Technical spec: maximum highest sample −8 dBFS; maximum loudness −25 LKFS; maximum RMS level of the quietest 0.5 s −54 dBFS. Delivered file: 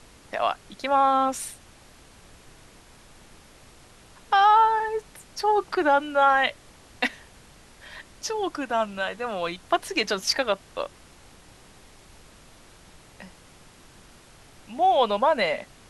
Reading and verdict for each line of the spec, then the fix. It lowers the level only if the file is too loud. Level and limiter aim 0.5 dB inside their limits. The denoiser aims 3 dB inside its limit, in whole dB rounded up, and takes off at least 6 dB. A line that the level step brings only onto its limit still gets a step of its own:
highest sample −8.5 dBFS: in spec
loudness −24.0 LKFS: out of spec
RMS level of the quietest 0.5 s −51 dBFS: out of spec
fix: broadband denoise 6 dB, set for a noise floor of −51 dBFS
level −1.5 dB

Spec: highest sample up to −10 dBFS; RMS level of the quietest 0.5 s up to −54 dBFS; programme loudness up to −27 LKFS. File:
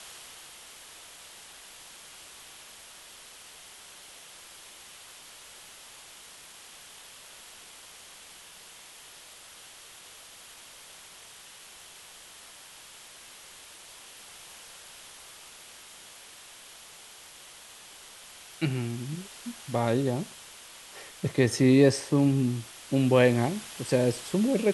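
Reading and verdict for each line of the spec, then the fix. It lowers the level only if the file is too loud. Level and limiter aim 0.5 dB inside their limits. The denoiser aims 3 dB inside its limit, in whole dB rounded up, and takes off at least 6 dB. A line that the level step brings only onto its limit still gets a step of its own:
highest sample −8.0 dBFS: out of spec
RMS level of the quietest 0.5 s −49 dBFS: out of spec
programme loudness −26.0 LKFS: out of spec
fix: broadband denoise 7 dB, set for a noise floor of −49 dBFS
level −1.5 dB
brickwall limiter −10.5 dBFS

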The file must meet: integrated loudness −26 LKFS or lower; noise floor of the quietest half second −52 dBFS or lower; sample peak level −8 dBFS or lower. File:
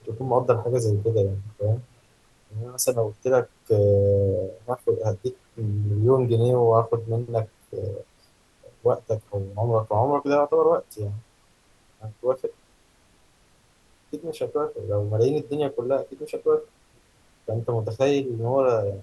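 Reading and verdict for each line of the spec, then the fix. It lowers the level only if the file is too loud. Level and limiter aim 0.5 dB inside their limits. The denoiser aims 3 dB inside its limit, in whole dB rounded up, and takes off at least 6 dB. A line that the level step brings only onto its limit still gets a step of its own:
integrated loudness −24.5 LKFS: out of spec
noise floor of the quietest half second −60 dBFS: in spec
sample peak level −5.5 dBFS: out of spec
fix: level −2 dB
brickwall limiter −8.5 dBFS

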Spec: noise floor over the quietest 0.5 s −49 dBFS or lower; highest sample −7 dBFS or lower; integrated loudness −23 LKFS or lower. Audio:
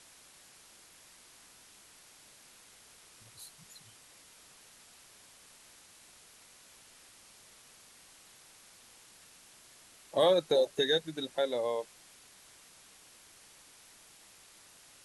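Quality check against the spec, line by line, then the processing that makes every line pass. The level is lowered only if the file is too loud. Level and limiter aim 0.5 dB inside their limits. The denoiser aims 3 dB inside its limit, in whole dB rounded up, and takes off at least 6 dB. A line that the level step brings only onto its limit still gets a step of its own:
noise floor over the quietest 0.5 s −58 dBFS: in spec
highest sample −15.5 dBFS: in spec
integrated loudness −30.0 LKFS: in spec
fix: no processing needed

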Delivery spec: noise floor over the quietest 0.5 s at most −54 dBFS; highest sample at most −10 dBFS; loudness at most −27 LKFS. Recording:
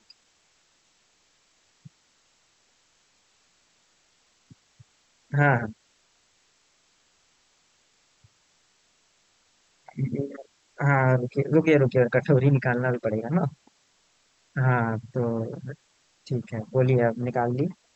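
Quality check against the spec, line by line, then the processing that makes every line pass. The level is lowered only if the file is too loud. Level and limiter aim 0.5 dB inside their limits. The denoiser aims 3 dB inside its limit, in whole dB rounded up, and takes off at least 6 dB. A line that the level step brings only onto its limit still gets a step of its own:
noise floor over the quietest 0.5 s −66 dBFS: in spec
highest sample −6.0 dBFS: out of spec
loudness −24.5 LKFS: out of spec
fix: level −3 dB
brickwall limiter −10.5 dBFS

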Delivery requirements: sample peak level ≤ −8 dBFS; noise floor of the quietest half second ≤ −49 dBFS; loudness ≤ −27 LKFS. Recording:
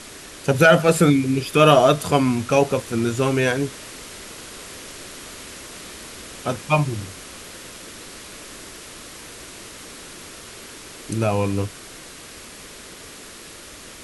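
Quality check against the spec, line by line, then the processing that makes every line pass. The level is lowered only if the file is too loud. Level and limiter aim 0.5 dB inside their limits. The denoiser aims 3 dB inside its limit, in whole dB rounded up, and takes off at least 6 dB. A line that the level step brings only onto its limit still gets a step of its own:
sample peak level −2.0 dBFS: out of spec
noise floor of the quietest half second −41 dBFS: out of spec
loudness −19.0 LKFS: out of spec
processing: level −8.5 dB

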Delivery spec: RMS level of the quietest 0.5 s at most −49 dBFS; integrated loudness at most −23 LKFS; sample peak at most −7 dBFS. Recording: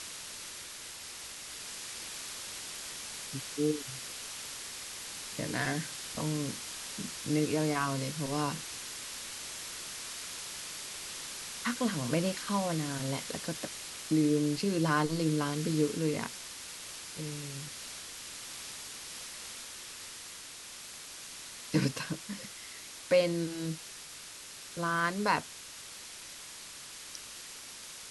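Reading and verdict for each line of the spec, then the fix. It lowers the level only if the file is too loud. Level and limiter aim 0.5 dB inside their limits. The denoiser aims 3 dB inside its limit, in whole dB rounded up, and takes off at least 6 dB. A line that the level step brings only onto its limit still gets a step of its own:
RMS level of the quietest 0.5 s −47 dBFS: out of spec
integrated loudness −35.0 LKFS: in spec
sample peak −14.0 dBFS: in spec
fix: broadband denoise 6 dB, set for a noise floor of −47 dBFS

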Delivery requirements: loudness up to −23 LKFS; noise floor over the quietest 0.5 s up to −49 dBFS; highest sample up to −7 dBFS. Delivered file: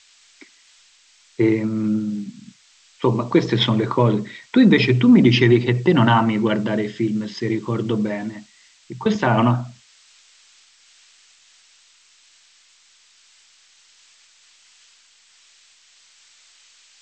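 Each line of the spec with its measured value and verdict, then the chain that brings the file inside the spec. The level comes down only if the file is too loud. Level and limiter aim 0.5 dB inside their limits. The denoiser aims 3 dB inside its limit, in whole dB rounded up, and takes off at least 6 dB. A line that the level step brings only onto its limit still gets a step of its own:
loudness −18.5 LKFS: out of spec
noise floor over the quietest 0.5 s −55 dBFS: in spec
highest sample −3.0 dBFS: out of spec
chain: level −5 dB

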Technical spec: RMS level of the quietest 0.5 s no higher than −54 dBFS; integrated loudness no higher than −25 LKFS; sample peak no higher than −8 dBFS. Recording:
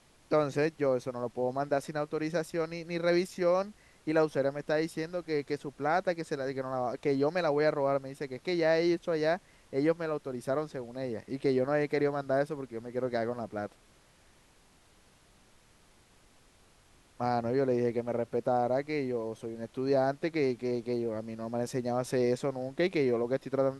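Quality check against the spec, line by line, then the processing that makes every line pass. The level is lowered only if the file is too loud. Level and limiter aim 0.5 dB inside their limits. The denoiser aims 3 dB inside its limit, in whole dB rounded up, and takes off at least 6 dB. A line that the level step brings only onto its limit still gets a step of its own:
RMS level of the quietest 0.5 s −62 dBFS: in spec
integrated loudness −31.5 LKFS: in spec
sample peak −15.0 dBFS: in spec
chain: no processing needed

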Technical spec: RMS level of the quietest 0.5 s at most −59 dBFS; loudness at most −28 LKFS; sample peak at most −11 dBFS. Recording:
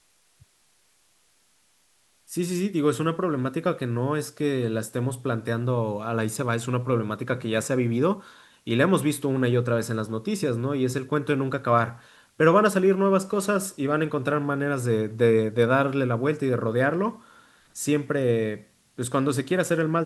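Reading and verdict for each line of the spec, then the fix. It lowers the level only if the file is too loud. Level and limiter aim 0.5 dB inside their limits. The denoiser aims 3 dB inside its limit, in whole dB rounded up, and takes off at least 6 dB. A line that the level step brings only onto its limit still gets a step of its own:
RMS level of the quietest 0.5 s −64 dBFS: in spec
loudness −25.0 LKFS: out of spec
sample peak −5.5 dBFS: out of spec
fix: level −3.5 dB
brickwall limiter −11.5 dBFS

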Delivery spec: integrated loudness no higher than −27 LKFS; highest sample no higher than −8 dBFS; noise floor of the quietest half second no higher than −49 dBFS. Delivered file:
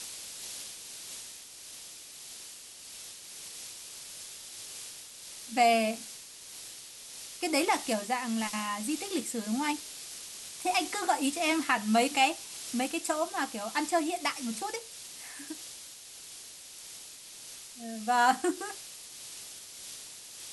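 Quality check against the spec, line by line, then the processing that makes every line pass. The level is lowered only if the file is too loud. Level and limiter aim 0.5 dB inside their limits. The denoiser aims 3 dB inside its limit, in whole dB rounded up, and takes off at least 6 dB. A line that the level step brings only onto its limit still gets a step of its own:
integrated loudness −32.0 LKFS: in spec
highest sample −13.5 dBFS: in spec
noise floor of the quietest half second −48 dBFS: out of spec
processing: broadband denoise 6 dB, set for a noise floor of −48 dBFS

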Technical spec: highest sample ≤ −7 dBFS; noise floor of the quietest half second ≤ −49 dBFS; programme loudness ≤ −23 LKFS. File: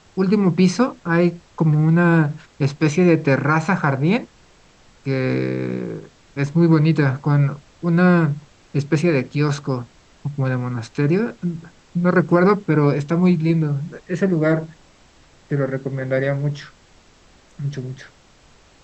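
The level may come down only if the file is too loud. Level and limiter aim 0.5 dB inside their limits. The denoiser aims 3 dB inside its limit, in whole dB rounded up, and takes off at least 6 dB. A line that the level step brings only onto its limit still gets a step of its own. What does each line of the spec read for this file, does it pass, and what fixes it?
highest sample −4.0 dBFS: out of spec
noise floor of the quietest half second −51 dBFS: in spec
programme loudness −19.5 LKFS: out of spec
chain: level −4 dB

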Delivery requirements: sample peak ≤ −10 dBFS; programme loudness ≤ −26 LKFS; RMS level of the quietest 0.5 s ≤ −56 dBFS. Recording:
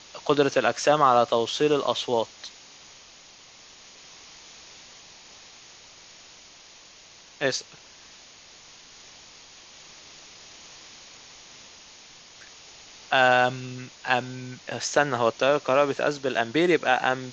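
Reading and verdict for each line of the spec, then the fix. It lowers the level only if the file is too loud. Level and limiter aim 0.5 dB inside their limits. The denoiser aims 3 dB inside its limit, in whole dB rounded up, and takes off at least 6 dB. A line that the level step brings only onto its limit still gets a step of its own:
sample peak −6.0 dBFS: out of spec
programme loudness −23.5 LKFS: out of spec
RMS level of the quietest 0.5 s −50 dBFS: out of spec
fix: broadband denoise 6 dB, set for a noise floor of −50 dBFS
level −3 dB
brickwall limiter −10.5 dBFS

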